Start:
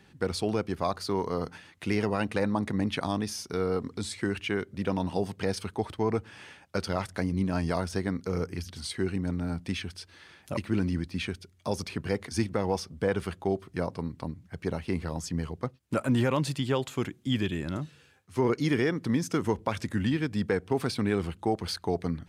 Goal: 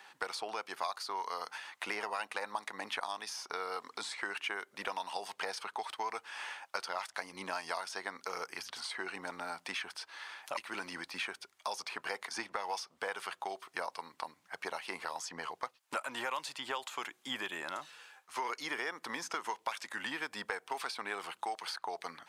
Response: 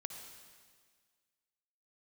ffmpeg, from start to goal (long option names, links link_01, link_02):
-filter_complex "[0:a]highpass=frequency=900:width_type=q:width=2,acrossover=split=2000|6800[link_01][link_02][link_03];[link_01]acompressor=threshold=-43dB:ratio=4[link_04];[link_02]acompressor=threshold=-48dB:ratio=4[link_05];[link_03]acompressor=threshold=-60dB:ratio=4[link_06];[link_04][link_05][link_06]amix=inputs=3:normalize=0,volume=4.5dB"